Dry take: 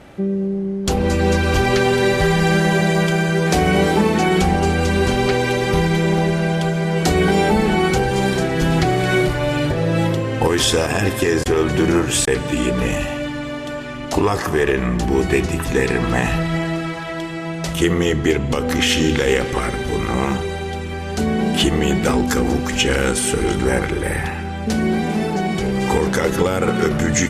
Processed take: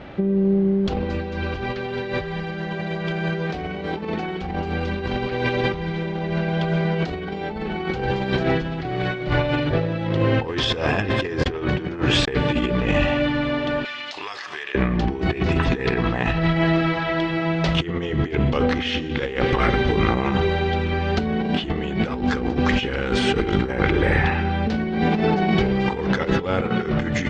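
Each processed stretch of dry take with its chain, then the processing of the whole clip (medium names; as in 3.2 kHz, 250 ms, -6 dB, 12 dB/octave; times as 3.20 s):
13.85–14.75 s: high-pass 970 Hz 6 dB/octave + tilt shelf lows -9.5 dB, about 1.4 kHz + compression 12:1, threshold -30 dBFS
whole clip: low-pass 4.2 kHz 24 dB/octave; compressor with a negative ratio -21 dBFS, ratio -0.5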